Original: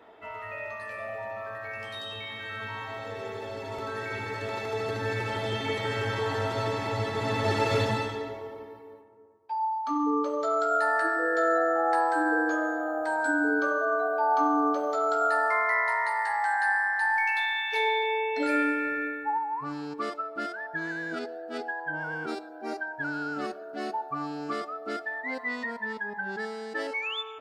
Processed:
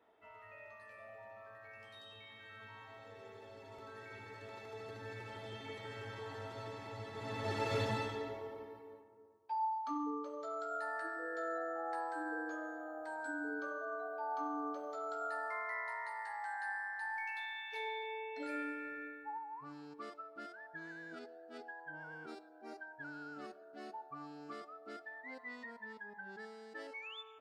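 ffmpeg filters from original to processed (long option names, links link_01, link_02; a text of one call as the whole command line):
ffmpeg -i in.wav -af "volume=-6.5dB,afade=type=in:start_time=7.08:duration=1.27:silence=0.298538,afade=type=out:start_time=9.6:duration=0.59:silence=0.354813" out.wav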